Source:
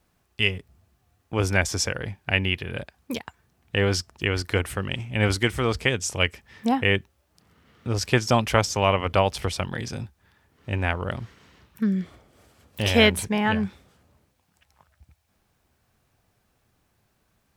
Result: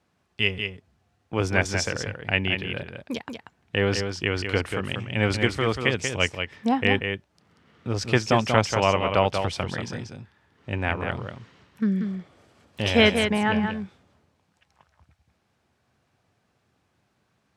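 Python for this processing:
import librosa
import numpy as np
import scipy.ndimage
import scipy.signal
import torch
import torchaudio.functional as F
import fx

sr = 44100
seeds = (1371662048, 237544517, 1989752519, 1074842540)

y = scipy.signal.sosfilt(scipy.signal.butter(2, 98.0, 'highpass', fs=sr, output='sos'), x)
y = fx.air_absorb(y, sr, metres=62.0)
y = y + 10.0 ** (-6.5 / 20.0) * np.pad(y, (int(187 * sr / 1000.0), 0))[:len(y)]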